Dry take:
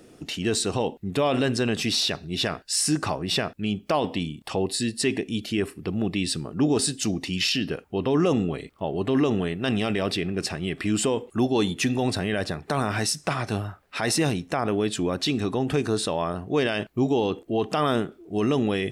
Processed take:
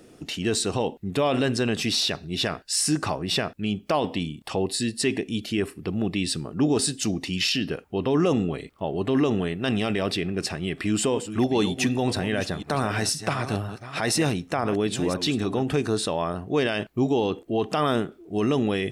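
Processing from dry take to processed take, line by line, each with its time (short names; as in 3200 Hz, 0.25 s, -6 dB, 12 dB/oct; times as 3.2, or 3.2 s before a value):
10.62–15.63 reverse delay 0.502 s, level -11 dB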